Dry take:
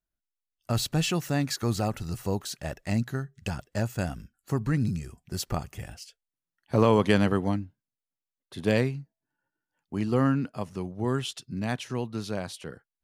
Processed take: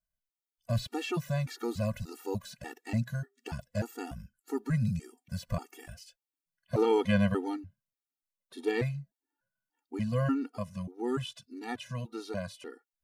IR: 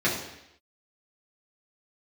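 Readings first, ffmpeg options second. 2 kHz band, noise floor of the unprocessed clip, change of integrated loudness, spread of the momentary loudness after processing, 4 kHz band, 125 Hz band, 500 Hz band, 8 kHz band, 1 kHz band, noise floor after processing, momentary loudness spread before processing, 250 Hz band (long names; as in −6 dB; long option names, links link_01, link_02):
−5.0 dB, below −85 dBFS, −5.0 dB, 16 LU, −8.0 dB, −4.5 dB, −4.0 dB, −11.5 dB, −6.0 dB, below −85 dBFS, 15 LU, −5.0 dB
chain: -filter_complex "[0:a]highshelf=frequency=11000:gain=5.5,acrossover=split=3600[link_01][link_02];[link_02]acompressor=threshold=-44dB:ratio=4:attack=1:release=60[link_03];[link_01][link_03]amix=inputs=2:normalize=0,afftfilt=real='re*gt(sin(2*PI*1.7*pts/sr)*(1-2*mod(floor(b*sr/1024/240),2)),0)':imag='im*gt(sin(2*PI*1.7*pts/sr)*(1-2*mod(floor(b*sr/1024/240),2)),0)':win_size=1024:overlap=0.75,volume=-1.5dB"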